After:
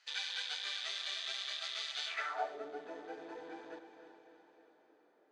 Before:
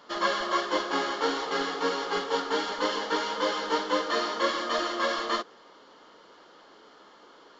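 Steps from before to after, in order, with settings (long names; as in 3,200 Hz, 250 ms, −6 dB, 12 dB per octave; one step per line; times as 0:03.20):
loose part that buzzes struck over −47 dBFS, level −22 dBFS
feedback delay with all-pass diffusion 471 ms, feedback 58%, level −9 dB
change of speed 1.43×
band-pass filter sweep 3,600 Hz → 290 Hz, 0:02.04–0:02.63
level −5 dB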